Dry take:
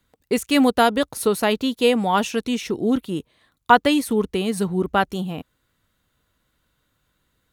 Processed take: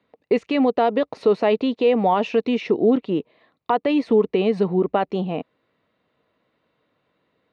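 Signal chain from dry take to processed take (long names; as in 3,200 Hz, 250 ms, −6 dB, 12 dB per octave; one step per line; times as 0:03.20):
downward compressor, threshold −17 dBFS, peak gain reduction 9.5 dB
brickwall limiter −14.5 dBFS, peak gain reduction 7.5 dB
loudspeaker in its box 200–3,500 Hz, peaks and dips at 450 Hz +5 dB, 650 Hz +5 dB, 1,500 Hz −9 dB, 3,300 Hz −8 dB
level +4.5 dB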